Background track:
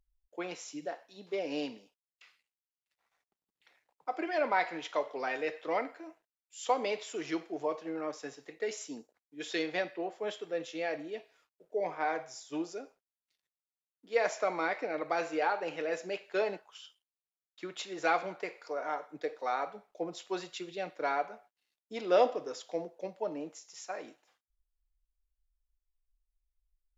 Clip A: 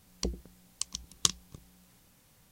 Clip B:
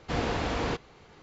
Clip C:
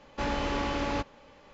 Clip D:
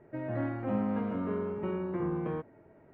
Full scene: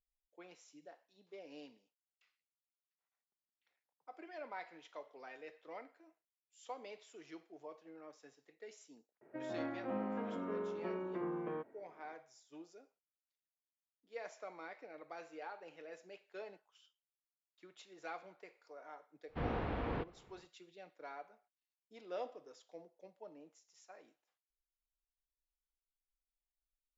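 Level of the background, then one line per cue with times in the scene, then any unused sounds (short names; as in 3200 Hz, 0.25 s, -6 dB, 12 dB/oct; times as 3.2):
background track -17.5 dB
9.21 add D -5 dB + HPF 280 Hz
19.27 add B -7.5 dB, fades 0.10 s + air absorption 480 m
not used: A, C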